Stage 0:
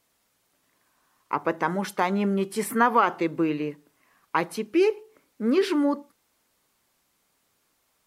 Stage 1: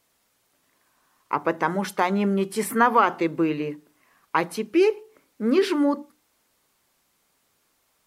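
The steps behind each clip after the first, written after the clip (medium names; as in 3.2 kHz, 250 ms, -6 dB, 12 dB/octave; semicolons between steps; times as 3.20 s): hum notches 60/120/180/240/300 Hz; trim +2 dB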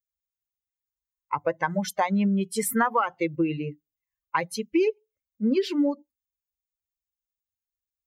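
expander on every frequency bin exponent 2; compression 4:1, threshold -28 dBFS, peak gain reduction 11 dB; trim +7 dB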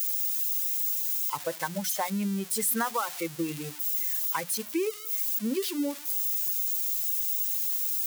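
zero-crossing glitches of -18 dBFS; trim -6.5 dB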